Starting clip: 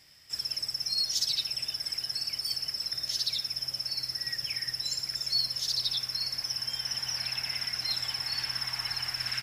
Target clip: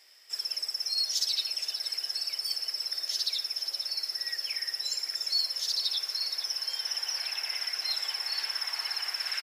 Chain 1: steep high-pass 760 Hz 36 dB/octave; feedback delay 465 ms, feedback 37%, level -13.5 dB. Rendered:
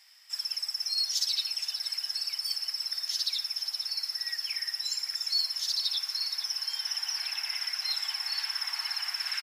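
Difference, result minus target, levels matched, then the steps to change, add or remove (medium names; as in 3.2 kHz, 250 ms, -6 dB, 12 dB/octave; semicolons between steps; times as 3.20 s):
500 Hz band -11.0 dB
change: steep high-pass 370 Hz 36 dB/octave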